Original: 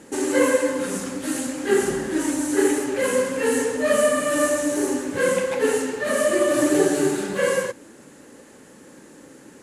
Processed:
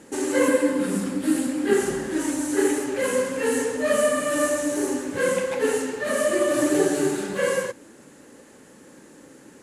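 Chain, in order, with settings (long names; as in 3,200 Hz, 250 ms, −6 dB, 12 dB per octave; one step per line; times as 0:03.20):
0:00.48–0:01.73: thirty-one-band graphic EQ 200 Hz +10 dB, 315 Hz +9 dB, 6,300 Hz −7 dB
level −2 dB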